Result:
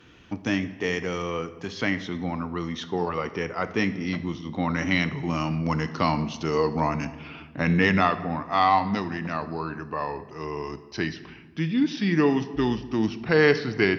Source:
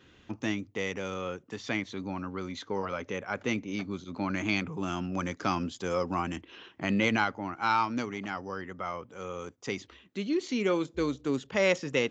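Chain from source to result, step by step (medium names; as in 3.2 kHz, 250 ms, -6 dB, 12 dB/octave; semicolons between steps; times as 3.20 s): gliding tape speed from 94% -> 79%; simulated room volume 1000 m³, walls mixed, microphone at 0.46 m; trim +5.5 dB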